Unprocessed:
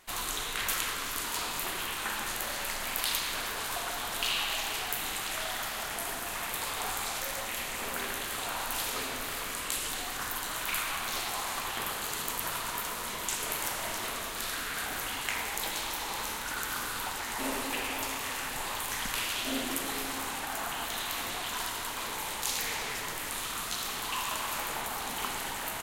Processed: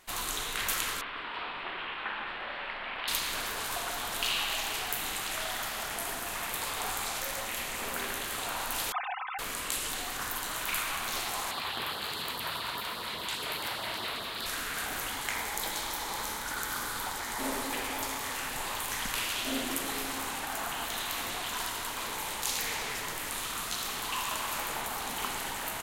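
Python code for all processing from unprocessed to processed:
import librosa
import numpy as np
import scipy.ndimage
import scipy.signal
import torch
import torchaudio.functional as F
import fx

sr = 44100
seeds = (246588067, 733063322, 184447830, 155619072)

y = fx.chain(x, sr, fx.cheby2_lowpass(hz=6100.0, order=4, stop_db=40),
    fx.low_shelf(hz=260.0, db=-11.0), at=(1.01, 3.08))
y = fx.chain(y, sr, fx.sine_speech(),
    fx.lowpass(hz=1800.0, slope=6),
    fx.comb(ms=3.9, depth=0.66), at=(8.92, 9.39))
y = fx.chain(y, sr, fx.highpass(hz=59.0, slope=12),
    fx.high_shelf_res(hz=5100.0, db=-6.5, q=3.0),
    fx.filter_lfo_notch(shape='sine', hz=4.9, low_hz=200.0, high_hz=2500.0, q=1.9), at=(11.51, 14.46))
y = fx.peak_eq(y, sr, hz=2700.0, db=-7.5, octaves=0.2, at=(15.09, 18.34), fade=0.02)
y = fx.dmg_tone(y, sr, hz=850.0, level_db=-49.0, at=(15.09, 18.34), fade=0.02)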